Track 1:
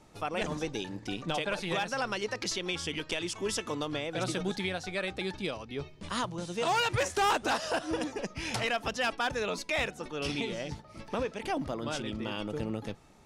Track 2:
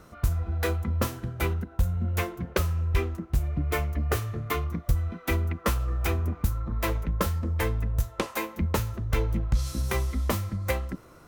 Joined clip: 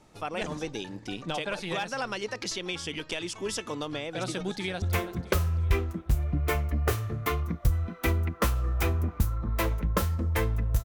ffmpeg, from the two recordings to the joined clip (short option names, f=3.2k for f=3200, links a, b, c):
-filter_complex "[0:a]apad=whole_dur=10.84,atrim=end=10.84,atrim=end=4.822[a];[1:a]atrim=start=2.058:end=8.08[b];[a][b]acrossfade=d=0.004:c1=hsin:c2=hsin,asplit=2[c][d];[d]afade=t=in:st=4.27:d=0.01,afade=t=out:st=4.82:d=0.01,aecho=0:1:330|660|990|1320|1650:0.251189|0.113035|0.0508657|0.0228896|0.0103003[e];[c][e]amix=inputs=2:normalize=0"